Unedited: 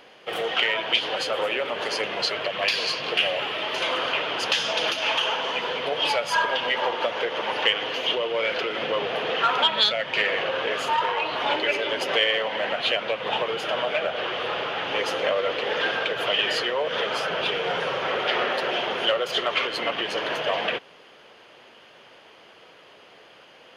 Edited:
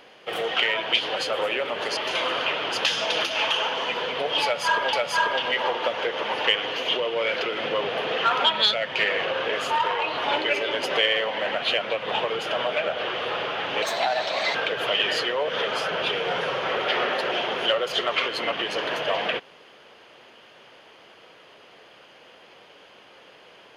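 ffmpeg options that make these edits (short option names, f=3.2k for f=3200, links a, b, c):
-filter_complex "[0:a]asplit=5[a][b][c][d][e];[a]atrim=end=1.972[f];[b]atrim=start=3.638:end=6.602[g];[c]atrim=start=6.108:end=15.004[h];[d]atrim=start=15:end=15.94,asetpts=PTS-STARTPTS,asetrate=56889,aresample=44100[i];[e]atrim=start=15.936[j];[f][g]acrossfade=d=0.004:c1=hsin:c2=hsin[k];[k][h]acrossfade=d=0.004:c1=hsin:c2=hsin[l];[l][i]acrossfade=d=0.004:c1=hsin:c2=hsin[m];[m][j]acrossfade=d=0.004:c1=hsin:c2=hsin"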